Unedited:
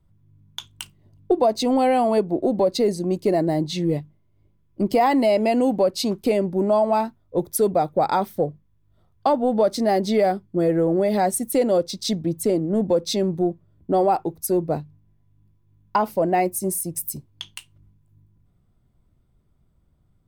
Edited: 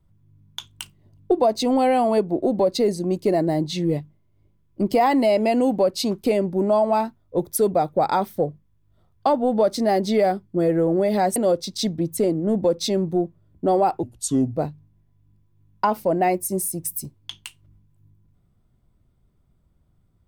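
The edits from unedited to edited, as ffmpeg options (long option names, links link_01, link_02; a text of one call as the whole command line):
ffmpeg -i in.wav -filter_complex "[0:a]asplit=4[link_01][link_02][link_03][link_04];[link_01]atrim=end=11.362[link_05];[link_02]atrim=start=11.618:end=14.294[link_06];[link_03]atrim=start=14.29:end=14.68,asetpts=PTS-STARTPTS,asetrate=32193,aresample=44100,atrim=end_sample=23560,asetpts=PTS-STARTPTS[link_07];[link_04]atrim=start=14.676[link_08];[link_05][link_06]acrossfade=duration=0.004:curve1=hsin:curve2=hsin[link_09];[link_09][link_07]acrossfade=duration=0.004:curve1=hsin:curve2=hsin[link_10];[link_10][link_08]acrossfade=duration=0.004:curve1=hsin:curve2=hsin" out.wav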